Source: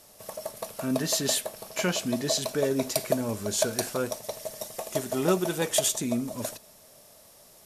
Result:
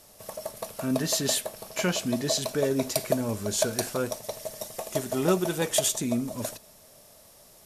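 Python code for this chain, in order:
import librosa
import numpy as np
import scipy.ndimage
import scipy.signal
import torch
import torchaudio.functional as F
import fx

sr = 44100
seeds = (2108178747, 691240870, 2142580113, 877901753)

y = fx.low_shelf(x, sr, hz=110.0, db=5.0)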